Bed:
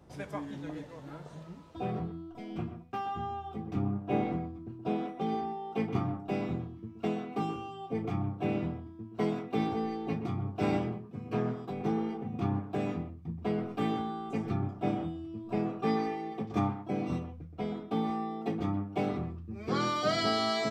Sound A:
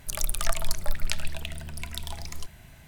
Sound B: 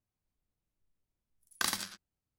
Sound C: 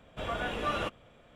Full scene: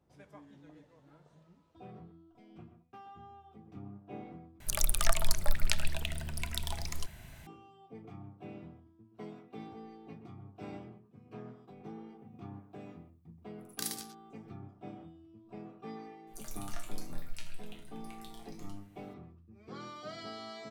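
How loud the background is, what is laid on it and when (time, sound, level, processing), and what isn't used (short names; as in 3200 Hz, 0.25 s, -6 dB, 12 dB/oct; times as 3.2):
bed -15.5 dB
4.6 replace with A -1 dB
12.18 add B -16.5 dB + tilt +4.5 dB/oct
16.27 add A -1.5 dB + resonator bank A#2 sus4, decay 0.38 s
not used: C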